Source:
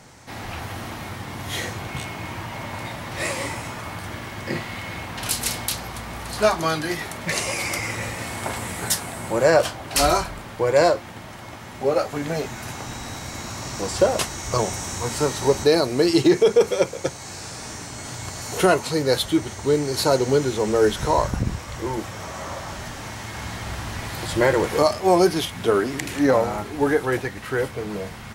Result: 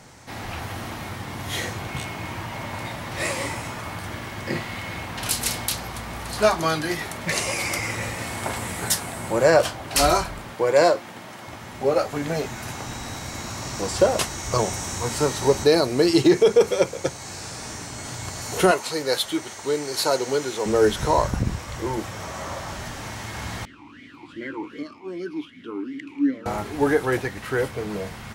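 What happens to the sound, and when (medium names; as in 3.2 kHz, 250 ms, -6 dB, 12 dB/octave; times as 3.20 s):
10.53–11.48 s: high-pass 170 Hz
18.71–20.66 s: high-pass 570 Hz 6 dB/octave
23.65–26.46 s: talking filter i-u 2.6 Hz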